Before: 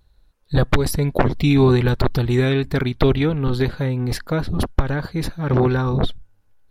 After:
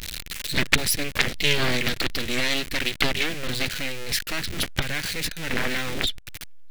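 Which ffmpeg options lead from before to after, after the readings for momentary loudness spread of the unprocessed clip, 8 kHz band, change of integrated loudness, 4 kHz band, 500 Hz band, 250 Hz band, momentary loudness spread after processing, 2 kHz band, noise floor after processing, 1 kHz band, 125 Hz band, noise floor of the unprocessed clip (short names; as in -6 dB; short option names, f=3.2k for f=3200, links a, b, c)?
8 LU, +8.0 dB, -5.0 dB, +7.5 dB, -11.5 dB, -12.0 dB, 8 LU, +4.5 dB, -39 dBFS, -7.0 dB, -15.5 dB, -59 dBFS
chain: -af "aeval=exprs='val(0)+0.5*0.119*sgn(val(0))':c=same,aeval=exprs='0.841*(cos(1*acos(clip(val(0)/0.841,-1,1)))-cos(1*PI/2))+0.266*(cos(3*acos(clip(val(0)/0.841,-1,1)))-cos(3*PI/2))+0.237*(cos(6*acos(clip(val(0)/0.841,-1,1)))-cos(6*PI/2))+0.0841*(cos(7*acos(clip(val(0)/0.841,-1,1)))-cos(7*PI/2))+0.0168*(cos(8*acos(clip(val(0)/0.841,-1,1)))-cos(8*PI/2))':c=same,highshelf=f=1.5k:t=q:w=1.5:g=12.5,volume=-11dB"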